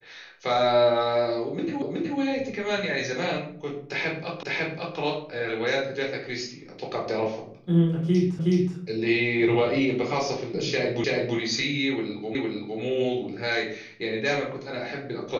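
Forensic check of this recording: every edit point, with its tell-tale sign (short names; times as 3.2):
1.82 repeat of the last 0.37 s
4.43 repeat of the last 0.55 s
8.39 repeat of the last 0.37 s
11.04 repeat of the last 0.33 s
12.35 repeat of the last 0.46 s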